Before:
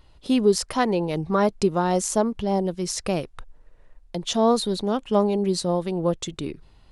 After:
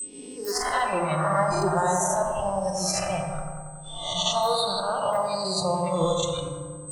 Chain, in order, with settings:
peak hold with a rise ahead of every peak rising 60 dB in 1.27 s
in parallel at −8 dB: wrap-around overflow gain 7.5 dB
on the sum: noise gate −34 dBFS, range −13 dB
parametric band 2,900 Hz +3.5 dB 0.93 octaves
brickwall limiter −9.5 dBFS, peak gain reduction 5.5 dB
transient designer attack +3 dB, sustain −10 dB
steady tone 8,200 Hz −21 dBFS
noise reduction from a noise print of the clip's start 21 dB
on a send: bucket-brigade delay 92 ms, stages 1,024, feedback 69%, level −5 dB
on the sum: feedback delay network reverb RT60 1.5 s, low-frequency decay 1.45×, high-frequency decay 0.55×, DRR 5 dB
level −4.5 dB

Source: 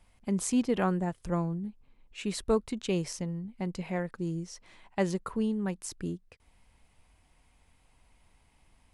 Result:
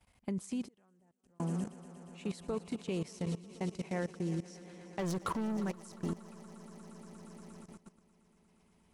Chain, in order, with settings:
high-pass filter 56 Hz 12 dB per octave
brickwall limiter −22.5 dBFS, peak gain reduction 7.5 dB
0:04.99–0:05.57: leveller curve on the samples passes 3
echo that builds up and dies away 118 ms, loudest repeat 5, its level −17.5 dB
0:00.64–0:01.40: gate with flip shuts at −29 dBFS, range −32 dB
output level in coarse steps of 17 dB

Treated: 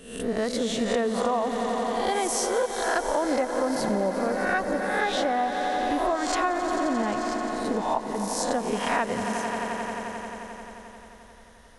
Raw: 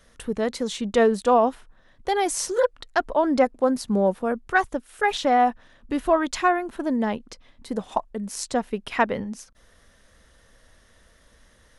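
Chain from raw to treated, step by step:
peak hold with a rise ahead of every peak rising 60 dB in 0.65 s
on a send: echo that builds up and dies away 88 ms, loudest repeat 5, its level −14 dB
on the sum: downward compressor, threshold −20 dBFS, peak gain reduction 8.5 dB
level −1.5 dB

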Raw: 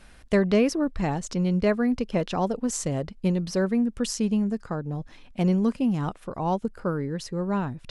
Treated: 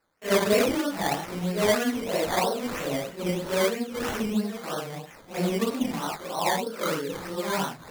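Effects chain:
random phases in long frames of 200 ms
meter weighting curve A
noise gate with hold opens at −45 dBFS
parametric band 7,900 Hz −10.5 dB 0.58 octaves
sample-and-hold swept by an LFO 13×, swing 60% 3.1 Hz
level +4.5 dB

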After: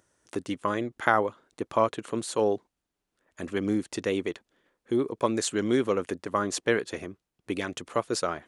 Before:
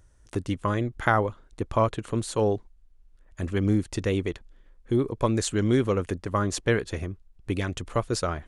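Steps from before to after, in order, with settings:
high-pass filter 240 Hz 12 dB per octave

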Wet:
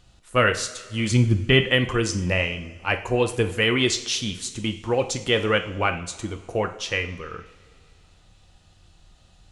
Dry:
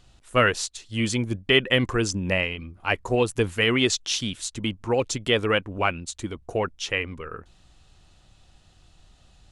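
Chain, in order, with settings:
0:01.11–0:01.61: bass and treble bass +11 dB, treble −3 dB
coupled-rooms reverb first 0.51 s, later 2.3 s, from −16 dB, DRR 6.5 dB

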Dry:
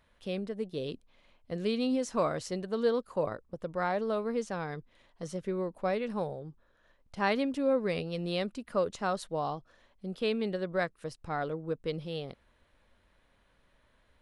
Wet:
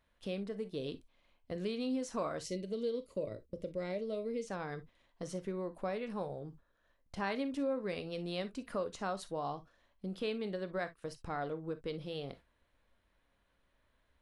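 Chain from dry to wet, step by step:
gain on a spectral selection 0:02.40–0:04.48, 660–1,900 Hz −16 dB
downward compressor 2 to 1, threshold −41 dBFS, peak gain reduction 10 dB
noise gate −55 dBFS, range −9 dB
reverb whose tail is shaped and stops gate 80 ms flat, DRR 10 dB
level +1 dB

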